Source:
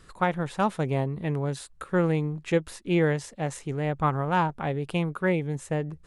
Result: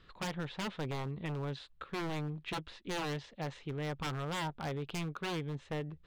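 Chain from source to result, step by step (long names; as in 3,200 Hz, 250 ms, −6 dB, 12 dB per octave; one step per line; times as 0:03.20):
transistor ladder low-pass 4,200 Hz, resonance 45%
wave folding −32 dBFS
level +1 dB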